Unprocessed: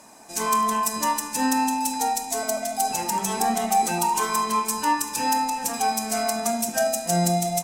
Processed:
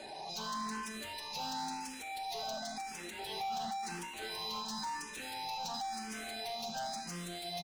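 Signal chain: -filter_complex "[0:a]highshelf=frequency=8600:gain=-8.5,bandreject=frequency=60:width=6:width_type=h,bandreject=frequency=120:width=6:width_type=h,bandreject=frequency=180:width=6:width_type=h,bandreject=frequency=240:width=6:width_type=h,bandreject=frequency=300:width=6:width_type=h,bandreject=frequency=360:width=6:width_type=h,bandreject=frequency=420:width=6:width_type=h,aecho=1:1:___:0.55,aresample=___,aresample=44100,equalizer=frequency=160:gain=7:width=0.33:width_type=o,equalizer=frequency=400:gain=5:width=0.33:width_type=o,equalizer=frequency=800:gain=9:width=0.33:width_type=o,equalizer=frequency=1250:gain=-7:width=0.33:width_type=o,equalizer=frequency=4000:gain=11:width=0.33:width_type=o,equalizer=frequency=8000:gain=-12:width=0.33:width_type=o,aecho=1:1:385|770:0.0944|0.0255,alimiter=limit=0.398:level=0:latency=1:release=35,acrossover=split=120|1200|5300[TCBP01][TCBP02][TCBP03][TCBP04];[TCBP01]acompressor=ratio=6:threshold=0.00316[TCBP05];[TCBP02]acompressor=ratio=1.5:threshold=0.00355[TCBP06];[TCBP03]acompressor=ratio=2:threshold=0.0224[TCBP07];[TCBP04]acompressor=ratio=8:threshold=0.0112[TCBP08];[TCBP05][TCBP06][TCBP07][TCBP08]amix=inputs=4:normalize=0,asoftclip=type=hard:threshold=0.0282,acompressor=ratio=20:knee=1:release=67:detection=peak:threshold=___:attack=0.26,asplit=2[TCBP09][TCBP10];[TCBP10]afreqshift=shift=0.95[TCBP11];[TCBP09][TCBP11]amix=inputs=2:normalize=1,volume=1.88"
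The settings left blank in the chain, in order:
5.2, 22050, 0.00891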